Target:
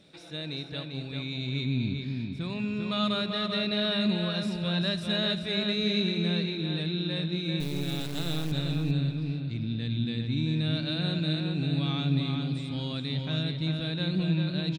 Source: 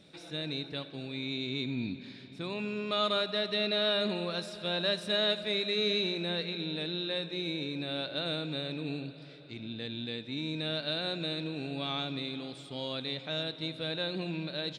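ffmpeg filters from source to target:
-filter_complex "[0:a]asubboost=boost=8:cutoff=170,asettb=1/sr,asplit=3[a][b][c];[a]atrim=end=7.604[d];[b]atrim=start=7.6:end=8.52,asetpts=PTS-STARTPTS,afade=t=in:d=0.004:c=qsin,afade=t=out:st=0.916:d=0.004:c=qsin,acrusher=bits=4:dc=4:mix=0:aa=0.000001[e];[c]atrim=start=8.516[f];[d][e]acrossfade=d=0.004:c1=hsin:c2=qsin[g];[g][f]acrossfade=d=0.004:c1=qsin:c2=hsin,asplit=2[h][i];[i]adelay=394,lowpass=f=4.6k:p=1,volume=-4dB,asplit=2[j][k];[k]adelay=394,lowpass=f=4.6k:p=1,volume=0.26,asplit=2[l][m];[m]adelay=394,lowpass=f=4.6k:p=1,volume=0.26,asplit=2[n][o];[o]adelay=394,lowpass=f=4.6k:p=1,volume=0.26[p];[h][j][l][n][p]amix=inputs=5:normalize=0"

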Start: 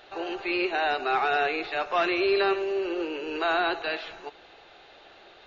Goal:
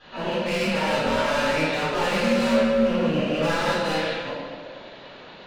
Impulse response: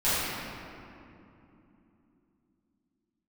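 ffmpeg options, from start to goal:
-filter_complex "[0:a]asoftclip=type=hard:threshold=-30dB,aeval=exprs='val(0)*sin(2*PI*160*n/s)':c=same[a];[1:a]atrim=start_sample=2205,asetrate=83790,aresample=44100[b];[a][b]afir=irnorm=-1:irlink=0,volume=1.5dB"

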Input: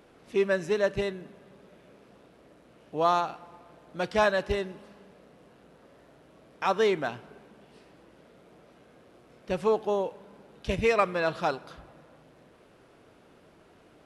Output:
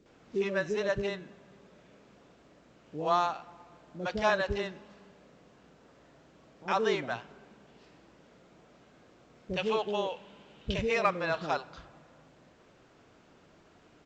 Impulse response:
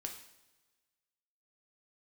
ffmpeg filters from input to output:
-filter_complex "[0:a]asettb=1/sr,asplit=3[a][b][c];[a]atrim=end=9.514[d];[b]atrim=start=9.51:end=10.68,asetpts=PTS-STARTPTS,afade=t=in:d=0.004:c=qsin,afade=t=out:st=1.166:d=0.004:c=qsin,equalizer=f=3k:t=o:w=0.74:g=13.5[e];[c]atrim=start=10.676[f];[d][e]acrossfade=d=0.004:c1=hsin:c2=qsin[g];[g][f]acrossfade=d=0.004:c1=qsin:c2=hsin,acrossover=split=470[h][i];[i]adelay=60[j];[h][j]amix=inputs=2:normalize=0,volume=-2dB" -ar 16000 -c:a pcm_alaw

